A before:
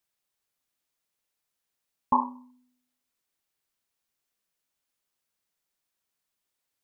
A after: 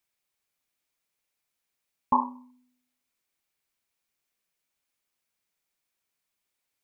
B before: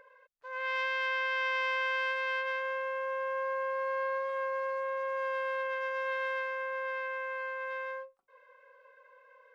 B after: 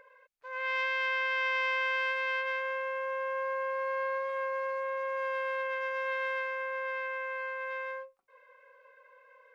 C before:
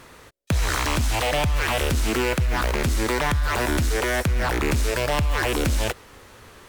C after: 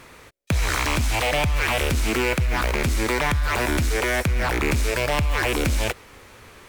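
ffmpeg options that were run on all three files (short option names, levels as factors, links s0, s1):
-af "equalizer=f=2300:t=o:w=0.3:g=5.5"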